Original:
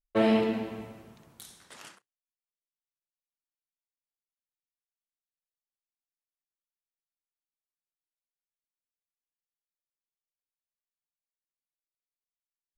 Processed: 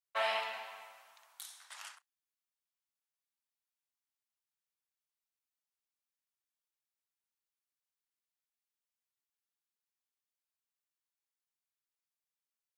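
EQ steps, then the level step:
inverse Chebyshev high-pass filter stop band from 390 Hz, stop band 40 dB
0.0 dB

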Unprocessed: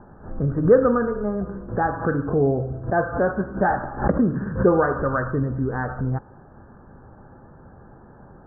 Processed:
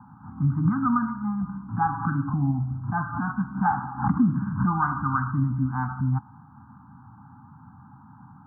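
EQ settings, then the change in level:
high-pass filter 99 Hz 24 dB per octave
elliptic band-stop filter 280–840 Hz, stop band 40 dB
phaser with its sweep stopped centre 1,800 Hz, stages 6
+3.0 dB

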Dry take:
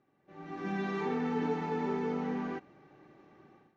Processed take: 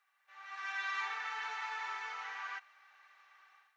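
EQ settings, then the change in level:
high-pass filter 1,200 Hz 24 dB per octave
+6.0 dB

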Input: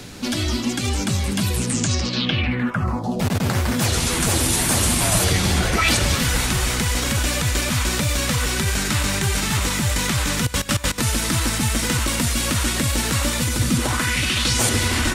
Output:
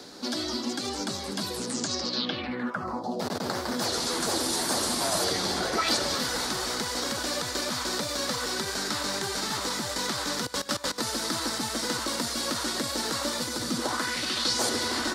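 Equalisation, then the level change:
three-way crossover with the lows and the highs turned down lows −23 dB, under 250 Hz, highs −20 dB, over 2,500 Hz
high shelf with overshoot 3,400 Hz +10.5 dB, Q 3
−3.0 dB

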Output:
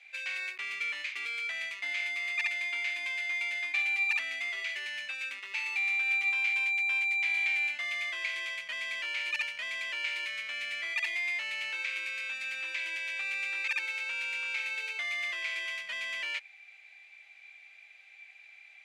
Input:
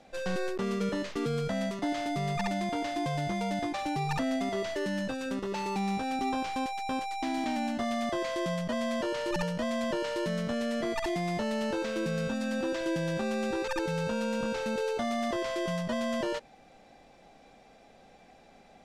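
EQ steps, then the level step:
high-pass with resonance 2,300 Hz, resonance Q 8.9
high-shelf EQ 4,300 Hz −6 dB
notch filter 5,500 Hz, Q 13
0.0 dB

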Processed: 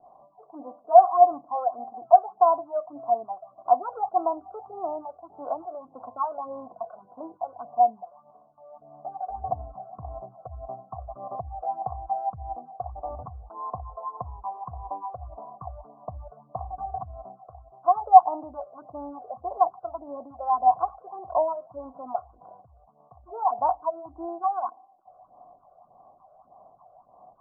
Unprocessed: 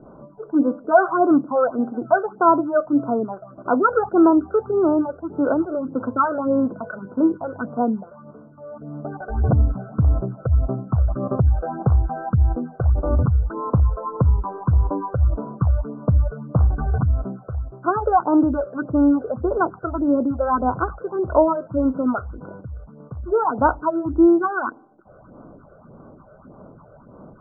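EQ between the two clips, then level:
formant resonators in series a
low-shelf EQ 180 Hz +7.5 dB
parametric band 750 Hz +9.5 dB 0.84 octaves
−2.5 dB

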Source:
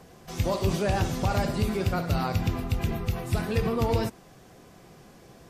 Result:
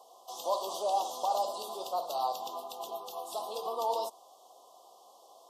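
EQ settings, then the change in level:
four-pole ladder high-pass 590 Hz, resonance 40%
elliptic band-stop filter 1,100–3,200 Hz, stop band 40 dB
+6.0 dB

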